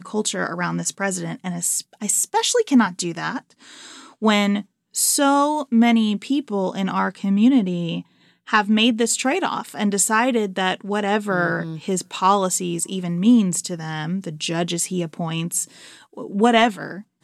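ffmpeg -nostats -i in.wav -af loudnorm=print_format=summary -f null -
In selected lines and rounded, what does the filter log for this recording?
Input Integrated:    -20.6 LUFS
Input True Peak:      -3.0 dBTP
Input LRA:             3.1 LU
Input Threshold:     -31.1 LUFS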